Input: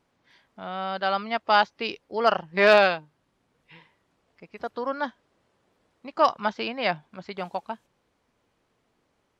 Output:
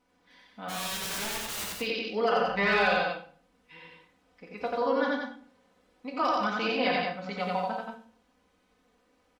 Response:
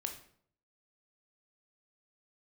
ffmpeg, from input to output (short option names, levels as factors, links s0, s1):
-filter_complex "[0:a]aecho=1:1:4:0.95,alimiter=limit=0.168:level=0:latency=1,asplit=3[s0][s1][s2];[s0]afade=t=out:st=0.68:d=0.02[s3];[s1]aeval=exprs='(mod(28.2*val(0)+1,2)-1)/28.2':c=same,afade=t=in:st=0.68:d=0.02,afade=t=out:st=1.76:d=0.02[s4];[s2]afade=t=in:st=1.76:d=0.02[s5];[s3][s4][s5]amix=inputs=3:normalize=0,asettb=1/sr,asplit=3[s6][s7][s8];[s6]atrim=end=2.474[s9];[s7]atrim=start=2.47:end=2.88,asetpts=PTS-STARTPTS,afade=t=in:d=0.004:c=qsin,afade=t=out:st=0.406:d=0.004:c=qsin,aeval=exprs='val(0)+0.00282*(sin(2*PI*50*n/s)+sin(2*PI*2*50*n/s)/2+sin(2*PI*3*50*n/s)/3+sin(2*PI*4*50*n/s)/4+sin(2*PI*5*50*n/s)/5)':c=same[s10];[s8]atrim=start=2.876[s11];[s9][s10]acrossfade=d=0.004:c1=hsin:c2=qsin[s12];[s12][s11]acrossfade=d=0.004:c1=qsin:c2=hsin,aecho=1:1:87.46|180.8:0.891|0.562[s13];[1:a]atrim=start_sample=2205,asetrate=57330,aresample=44100[s14];[s13][s14]afir=irnorm=-1:irlink=0"